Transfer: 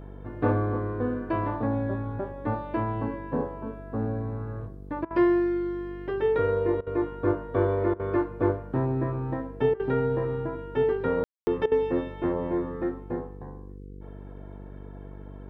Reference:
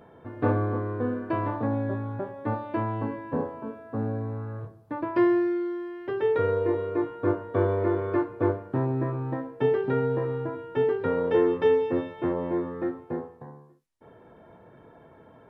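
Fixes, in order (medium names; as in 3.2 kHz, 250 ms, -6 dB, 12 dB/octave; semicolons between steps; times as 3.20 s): de-hum 48.7 Hz, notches 10; room tone fill 11.24–11.47 s; interpolate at 5.05/6.81/7.94/9.74/11.66 s, 55 ms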